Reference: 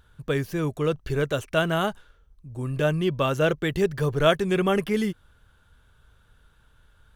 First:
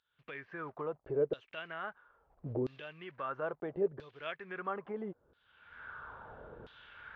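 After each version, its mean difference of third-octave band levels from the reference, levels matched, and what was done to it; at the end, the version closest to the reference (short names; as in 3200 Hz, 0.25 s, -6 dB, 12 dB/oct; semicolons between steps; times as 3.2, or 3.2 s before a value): 10.0 dB: block floating point 5-bit; recorder AGC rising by 36 dB/s; tape spacing loss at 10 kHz 44 dB; LFO band-pass saw down 0.75 Hz 400–4100 Hz; gain -2 dB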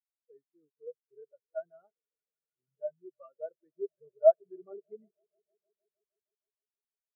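23.5 dB: HPF 490 Hz 6 dB/oct; high shelf 3500 Hz -5.5 dB; on a send: swelling echo 0.155 s, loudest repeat 5, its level -16 dB; on the sum: spectral expander 4:1; gain -1.5 dB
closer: first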